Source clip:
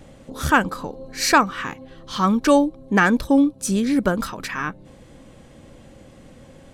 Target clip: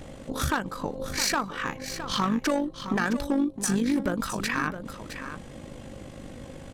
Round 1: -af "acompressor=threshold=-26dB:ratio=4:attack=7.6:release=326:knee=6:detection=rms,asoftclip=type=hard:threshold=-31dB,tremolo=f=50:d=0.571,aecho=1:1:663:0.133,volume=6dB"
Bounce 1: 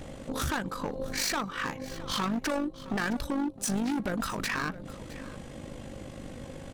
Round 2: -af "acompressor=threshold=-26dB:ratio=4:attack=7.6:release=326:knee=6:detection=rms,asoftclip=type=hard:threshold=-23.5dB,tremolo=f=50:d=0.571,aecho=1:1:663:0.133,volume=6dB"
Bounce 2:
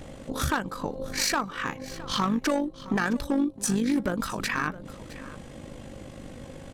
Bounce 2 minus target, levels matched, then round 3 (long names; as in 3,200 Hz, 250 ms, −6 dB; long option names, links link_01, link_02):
echo-to-direct −7 dB
-af "acompressor=threshold=-26dB:ratio=4:attack=7.6:release=326:knee=6:detection=rms,asoftclip=type=hard:threshold=-23.5dB,tremolo=f=50:d=0.571,aecho=1:1:663:0.299,volume=6dB"